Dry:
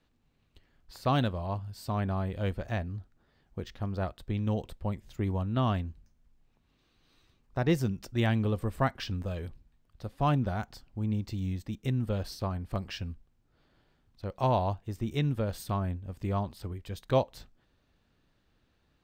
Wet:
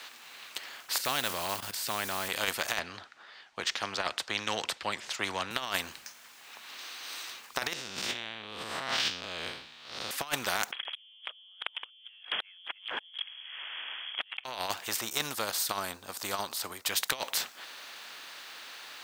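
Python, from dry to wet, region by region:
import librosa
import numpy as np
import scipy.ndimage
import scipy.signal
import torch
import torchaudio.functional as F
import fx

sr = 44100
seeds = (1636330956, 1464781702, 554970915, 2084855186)

y = fx.chain(x, sr, fx.block_float(bits=7),
    fx.low_shelf(hz=390.0, db=10.5),
    fx.level_steps(step_db=15), at=(0.98, 2.29))
y = fx.chain(y, sr, fx.lowpass(hz=5000.0, slope=12),
    fx.band_widen(depth_pct=40), at=(2.79, 5.51))
y = fx.chain(y, sr, fx.spec_blur(span_ms=157.0),
    fx.curve_eq(hz=(180.0, 1700.0, 3600.0, 12000.0), db=(0, -9, 0, -26)),
    fx.over_compress(threshold_db=-41.0, ratio=-1.0), at=(7.73, 10.11))
y = fx.chain(y, sr, fx.leveller(passes=3),
    fx.freq_invert(carrier_hz=3300),
    fx.band_squash(depth_pct=40), at=(10.72, 14.44))
y = fx.chain(y, sr, fx.band_shelf(hz=2300.0, db=-10.0, octaves=1.2),
    fx.upward_expand(threshold_db=-39.0, expansion=1.5), at=(15.01, 16.86))
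y = scipy.signal.sosfilt(scipy.signal.butter(2, 1300.0, 'highpass', fs=sr, output='sos'), y)
y = fx.over_compress(y, sr, threshold_db=-44.0, ratio=-0.5)
y = fx.spectral_comp(y, sr, ratio=2.0)
y = y * librosa.db_to_amplitude(11.5)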